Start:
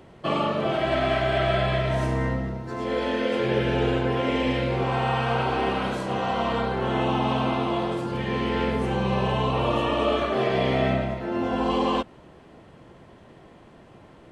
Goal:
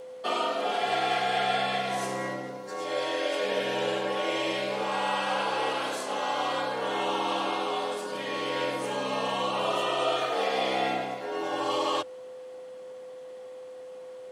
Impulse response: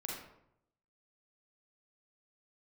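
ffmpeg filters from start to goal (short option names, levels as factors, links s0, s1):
-af "bass=f=250:g=-13,treble=f=4000:g=12,afreqshift=68,aeval=exprs='val(0)+0.0141*sin(2*PI*510*n/s)':c=same,volume=0.708"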